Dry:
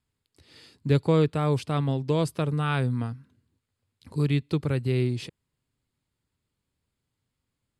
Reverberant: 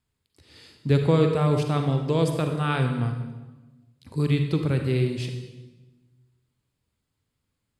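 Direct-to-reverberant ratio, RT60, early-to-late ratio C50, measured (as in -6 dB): 4.5 dB, 1.2 s, 5.5 dB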